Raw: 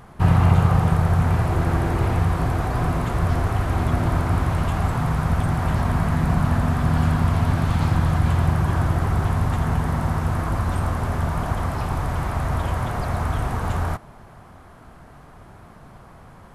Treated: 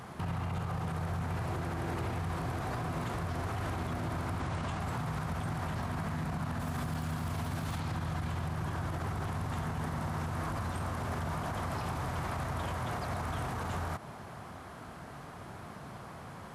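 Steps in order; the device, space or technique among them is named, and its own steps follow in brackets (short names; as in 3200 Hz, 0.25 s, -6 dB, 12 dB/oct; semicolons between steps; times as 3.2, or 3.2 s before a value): 4.4–4.8 LPF 9600 Hz 24 dB/oct; 6.6–7.78 high shelf 6800 Hz +10.5 dB; broadcast voice chain (HPF 90 Hz 12 dB/oct; de-esser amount 70%; compressor 3:1, threshold -28 dBFS, peak gain reduction 12 dB; bell 4800 Hz +4 dB 2.3 oct; limiter -27.5 dBFS, peak gain reduction 11 dB)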